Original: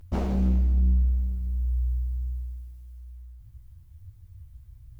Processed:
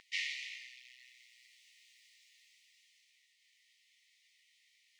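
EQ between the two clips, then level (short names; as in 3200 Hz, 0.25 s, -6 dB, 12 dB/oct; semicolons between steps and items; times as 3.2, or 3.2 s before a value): brick-wall FIR high-pass 1800 Hz; air absorption 130 m; +16.5 dB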